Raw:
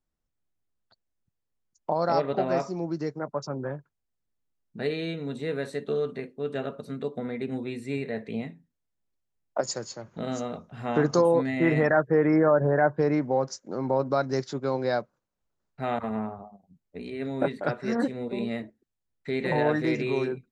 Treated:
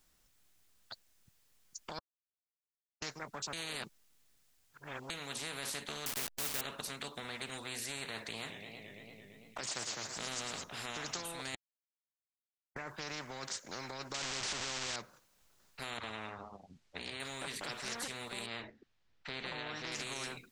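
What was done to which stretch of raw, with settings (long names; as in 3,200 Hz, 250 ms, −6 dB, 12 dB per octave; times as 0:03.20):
0:01.99–0:03.02: silence
0:03.53–0:05.10: reverse
0:06.06–0:06.61: hold until the input has moved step −40 dBFS
0:08.17–0:10.64: feedback echo with a swinging delay time 113 ms, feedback 77%, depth 192 cents, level −19.5 dB
0:11.55–0:12.76: silence
0:14.14–0:14.96: linear delta modulator 32 kbit/s, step −24 dBFS
0:15.97–0:17.20: low-pass filter 5,300 Hz
0:18.46–0:19.92: high-frequency loss of the air 210 metres
whole clip: tilt shelving filter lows −6.5 dB, about 1,200 Hz; brickwall limiter −23.5 dBFS; every bin compressed towards the loudest bin 4 to 1; level +1 dB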